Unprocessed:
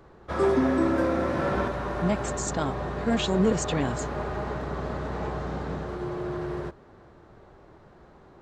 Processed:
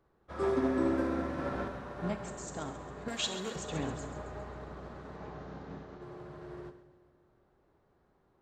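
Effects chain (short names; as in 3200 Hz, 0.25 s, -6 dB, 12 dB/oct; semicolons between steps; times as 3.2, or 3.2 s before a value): 3.08–3.56 tilt +4 dB/oct; 5.16–6.02 steep low-pass 7000 Hz 48 dB/oct; split-band echo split 610 Hz, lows 0.199 s, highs 0.135 s, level -10 dB; non-linear reverb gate 90 ms rising, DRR 10.5 dB; upward expander 1.5:1, over -41 dBFS; gain -8 dB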